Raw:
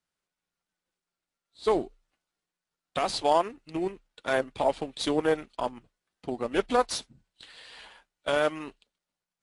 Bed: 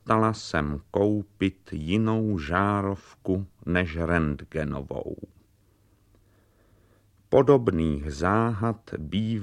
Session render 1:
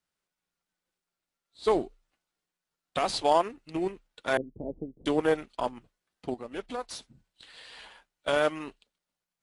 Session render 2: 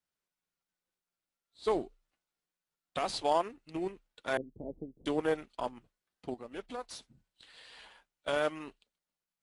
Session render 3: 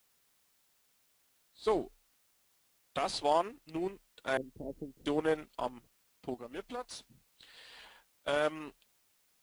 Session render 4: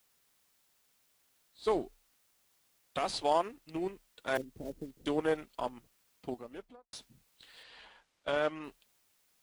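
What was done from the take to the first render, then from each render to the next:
0:04.37–0:05.06: inverse Chebyshev low-pass filter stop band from 1,800 Hz, stop band 70 dB; 0:06.34–0:07.54: downward compressor 1.5 to 1, threshold −51 dBFS
level −5.5 dB
bit-depth reduction 12 bits, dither triangular
0:04.35–0:04.99: one scale factor per block 5 bits; 0:06.35–0:06.93: fade out and dull; 0:07.63–0:08.64: high-frequency loss of the air 73 metres

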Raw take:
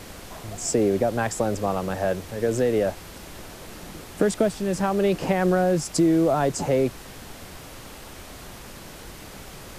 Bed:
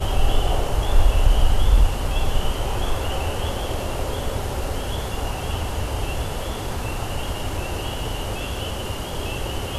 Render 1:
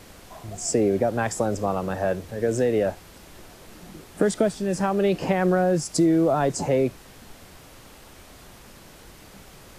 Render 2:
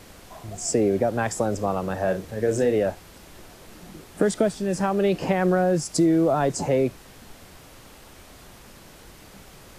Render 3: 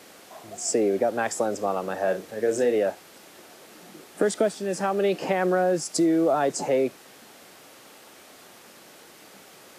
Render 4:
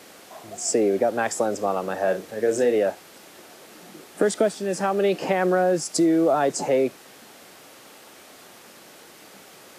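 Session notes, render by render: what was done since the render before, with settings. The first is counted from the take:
noise reduction from a noise print 6 dB
0:02.04–0:02.76: double-tracking delay 37 ms −8.5 dB
high-pass filter 280 Hz 12 dB per octave; notch filter 1,000 Hz, Q 18
level +2 dB

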